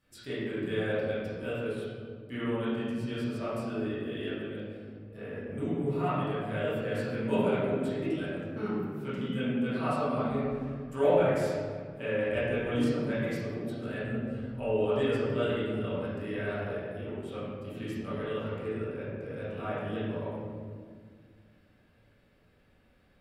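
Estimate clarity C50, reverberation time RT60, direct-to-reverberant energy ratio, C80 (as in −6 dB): −3.0 dB, 1.9 s, −12.5 dB, −0.5 dB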